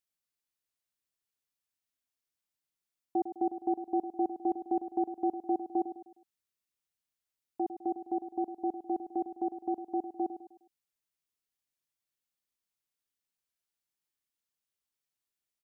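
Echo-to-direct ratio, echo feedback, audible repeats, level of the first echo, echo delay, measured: −10.0 dB, 41%, 4, −11.0 dB, 103 ms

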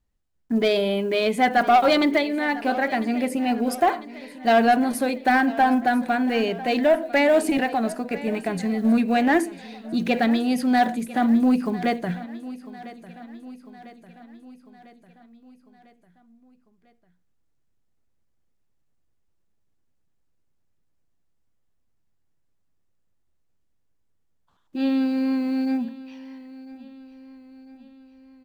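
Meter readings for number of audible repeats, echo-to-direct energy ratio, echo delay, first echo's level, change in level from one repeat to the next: 4, −16.0 dB, 999 ms, −17.5 dB, −5.0 dB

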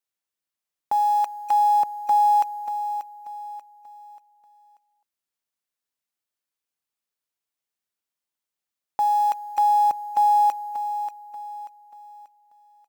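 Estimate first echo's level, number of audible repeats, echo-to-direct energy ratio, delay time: −11.0 dB, 3, −10.5 dB, 586 ms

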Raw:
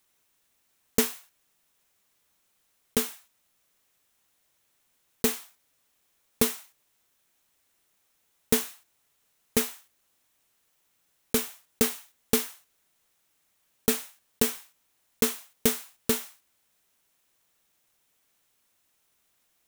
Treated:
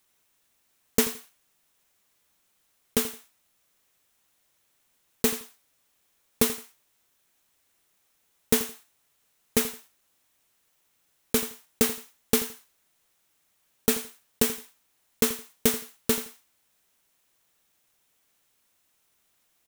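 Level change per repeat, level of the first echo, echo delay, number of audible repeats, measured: −13.5 dB, −15.0 dB, 84 ms, 2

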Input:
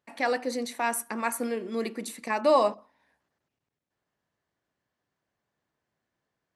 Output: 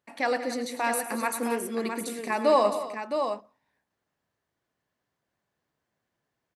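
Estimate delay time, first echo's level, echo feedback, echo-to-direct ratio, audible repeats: 107 ms, −13.0 dB, repeats not evenly spaced, −5.0 dB, 4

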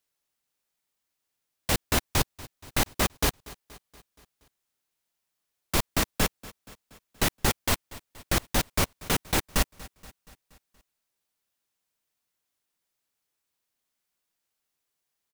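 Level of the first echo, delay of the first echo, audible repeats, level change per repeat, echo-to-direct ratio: −20.5 dB, 237 ms, 4, −4.5 dB, −18.5 dB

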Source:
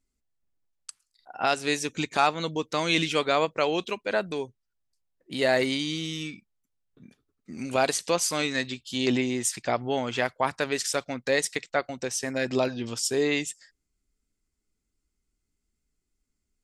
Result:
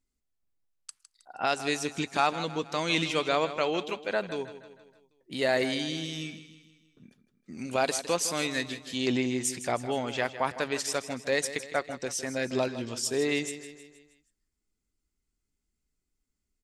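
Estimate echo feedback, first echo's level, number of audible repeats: 50%, −13.0 dB, 4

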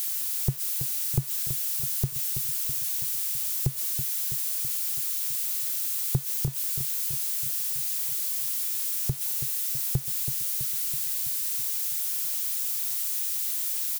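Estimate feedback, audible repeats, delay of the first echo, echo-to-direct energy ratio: 60%, 6, 328 ms, −8.0 dB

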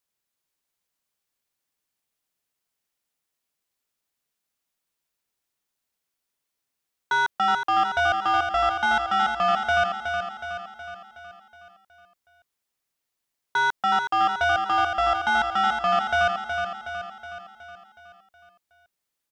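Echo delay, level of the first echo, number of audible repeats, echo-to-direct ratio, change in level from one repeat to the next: 369 ms, −6.5 dB, 6, −5.0 dB, −5.5 dB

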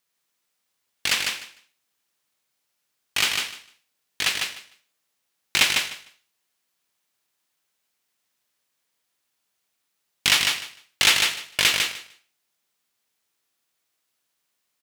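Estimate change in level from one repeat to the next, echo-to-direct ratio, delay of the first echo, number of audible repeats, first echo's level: −15.5 dB, −4.5 dB, 151 ms, 2, −4.5 dB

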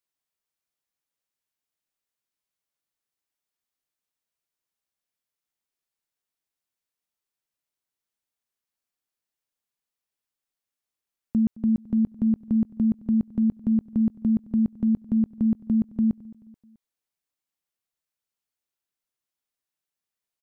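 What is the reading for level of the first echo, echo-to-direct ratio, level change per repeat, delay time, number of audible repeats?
−21.0 dB, −20.0 dB, −6.5 dB, 216 ms, 3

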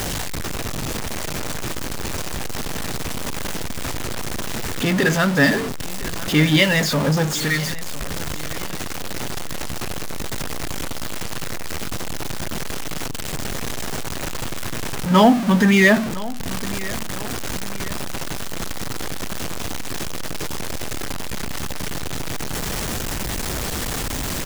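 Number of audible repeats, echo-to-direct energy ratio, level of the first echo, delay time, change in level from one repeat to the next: 2, −17.0 dB, −18.0 dB, 1,006 ms, −7.0 dB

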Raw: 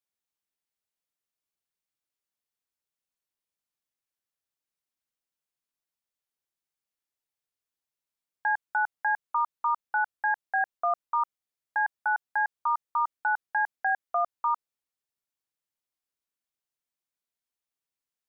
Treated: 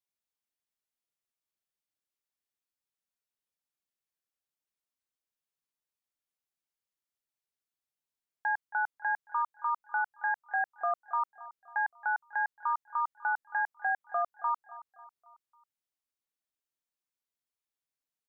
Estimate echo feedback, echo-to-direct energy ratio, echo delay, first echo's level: 50%, −16.5 dB, 273 ms, −17.5 dB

